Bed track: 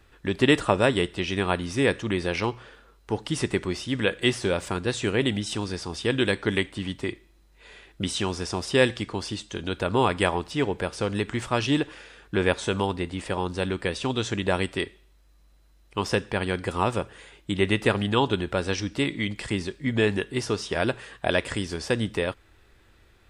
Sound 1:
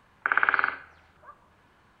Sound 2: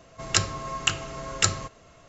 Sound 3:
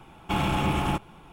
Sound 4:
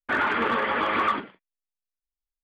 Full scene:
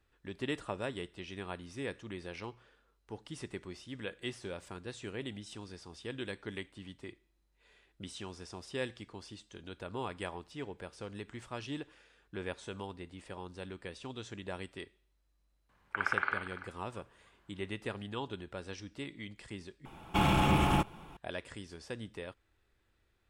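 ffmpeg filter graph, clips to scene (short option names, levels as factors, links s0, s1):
-filter_complex "[0:a]volume=0.141[s0];[1:a]aecho=1:1:290:0.2[s1];[s0]asplit=2[s2][s3];[s2]atrim=end=19.854[s4];[3:a]atrim=end=1.32,asetpts=PTS-STARTPTS,volume=0.841[s5];[s3]atrim=start=21.166[s6];[s1]atrim=end=2,asetpts=PTS-STARTPTS,volume=0.335,afade=t=in:d=0.004:c=hsin,afade=t=out:st=1.996:d=0.004:c=hsin,adelay=15690[s7];[s4][s5]acrossfade=d=0.004:c1=hsin:c2=hsin[s8];[s8][s6]acrossfade=d=0.004:c1=hsin:c2=hsin[s9];[s9][s7]amix=inputs=2:normalize=0"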